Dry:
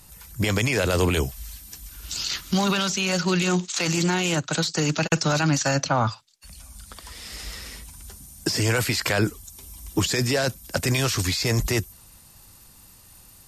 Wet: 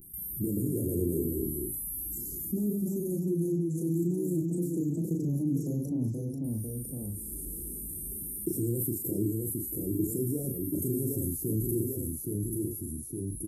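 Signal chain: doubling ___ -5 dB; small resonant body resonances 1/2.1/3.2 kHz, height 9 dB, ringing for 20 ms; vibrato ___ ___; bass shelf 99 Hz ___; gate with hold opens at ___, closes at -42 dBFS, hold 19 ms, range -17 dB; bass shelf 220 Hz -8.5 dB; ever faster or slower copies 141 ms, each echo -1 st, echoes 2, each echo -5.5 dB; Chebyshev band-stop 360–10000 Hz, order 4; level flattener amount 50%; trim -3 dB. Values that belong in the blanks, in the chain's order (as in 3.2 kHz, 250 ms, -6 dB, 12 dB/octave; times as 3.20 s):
35 ms, 0.5 Hz, 77 cents, -9 dB, -36 dBFS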